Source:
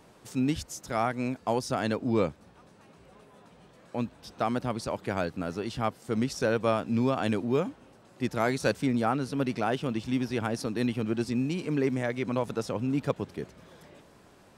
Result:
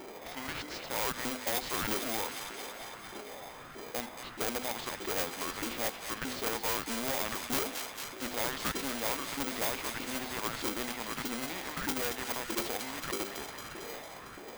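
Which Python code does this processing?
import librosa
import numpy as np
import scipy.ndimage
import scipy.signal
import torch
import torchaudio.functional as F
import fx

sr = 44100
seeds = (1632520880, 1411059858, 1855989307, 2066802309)

p1 = scipy.signal.sosfilt(scipy.signal.butter(2, 3600.0, 'lowpass', fs=sr, output='sos'), x)
p2 = fx.peak_eq(p1, sr, hz=240.0, db=12.0, octaves=0.92)
p3 = fx.hum_notches(p2, sr, base_hz=50, count=10)
p4 = fx.filter_lfo_highpass(p3, sr, shape='saw_up', hz=1.6, low_hz=410.0, high_hz=1900.0, q=5.7)
p5 = fx.low_shelf(p4, sr, hz=140.0, db=-11.0)
p6 = fx.sample_hold(p5, sr, seeds[0], rate_hz=1800.0, jitter_pct=0)
p7 = p5 + F.gain(torch.from_numpy(p6), -3.5).numpy()
p8 = fx.hpss(p7, sr, part='percussive', gain_db=-6)
p9 = fx.formant_shift(p8, sr, semitones=-4)
p10 = 10.0 ** (-22.0 / 20.0) * np.tanh(p9 / 10.0 ** (-22.0 / 20.0))
p11 = p10 + fx.echo_wet_highpass(p10, sr, ms=226, feedback_pct=67, hz=1700.0, wet_db=-10, dry=0)
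p12 = fx.spectral_comp(p11, sr, ratio=2.0)
y = F.gain(torch.from_numpy(p12), 5.5).numpy()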